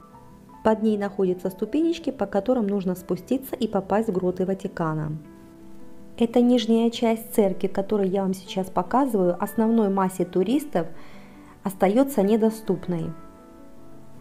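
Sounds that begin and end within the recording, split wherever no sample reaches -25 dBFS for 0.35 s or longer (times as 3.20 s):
0.65–5.15 s
6.18–10.85 s
11.66–13.10 s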